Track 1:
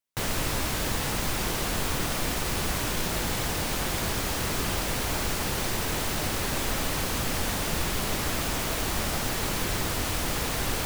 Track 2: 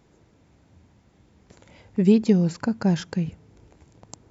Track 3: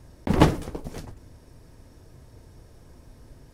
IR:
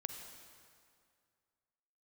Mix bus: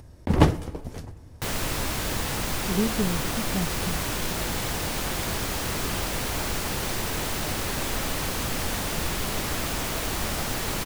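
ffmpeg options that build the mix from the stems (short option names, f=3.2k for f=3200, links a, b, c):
-filter_complex "[0:a]adelay=1250,volume=0dB[a];[1:a]adelay=700,volume=-9dB[b];[2:a]equalizer=f=83:w=1.5:g=6.5,volume=-3dB,asplit=2[c][d];[d]volume=-13dB[e];[3:a]atrim=start_sample=2205[f];[e][f]afir=irnorm=-1:irlink=0[g];[a][b][c][g]amix=inputs=4:normalize=0,acompressor=mode=upward:threshold=-46dB:ratio=2.5"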